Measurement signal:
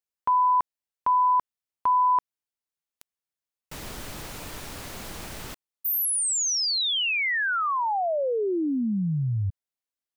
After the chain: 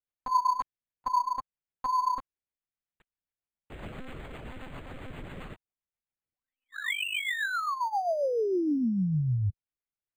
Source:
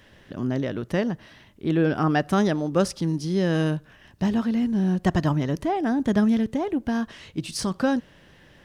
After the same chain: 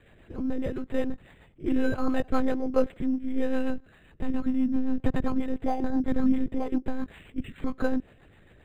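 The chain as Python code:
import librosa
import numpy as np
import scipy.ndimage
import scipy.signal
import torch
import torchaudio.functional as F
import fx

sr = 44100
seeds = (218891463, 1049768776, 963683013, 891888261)

y = fx.lpc_monotone(x, sr, seeds[0], pitch_hz=260.0, order=10)
y = fx.rotary(y, sr, hz=7.5)
y = np.interp(np.arange(len(y)), np.arange(len(y))[::8], y[::8])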